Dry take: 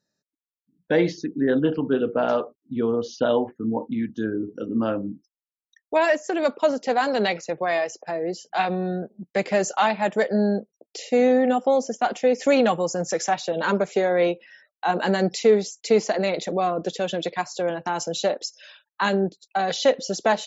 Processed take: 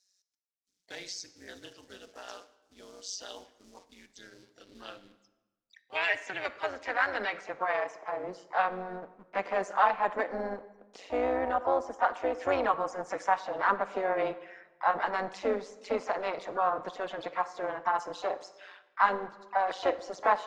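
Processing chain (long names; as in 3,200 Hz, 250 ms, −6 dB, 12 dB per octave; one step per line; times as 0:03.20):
mu-law and A-law mismatch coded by mu
band-pass filter sweep 5,700 Hz → 1,100 Hz, 0:04.06–0:07.89
amplitude modulation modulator 190 Hz, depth 65%
pitch-shifted copies added +4 semitones −11 dB
on a send: convolution reverb RT60 1.1 s, pre-delay 35 ms, DRR 15 dB
on the sum: level +4.5 dB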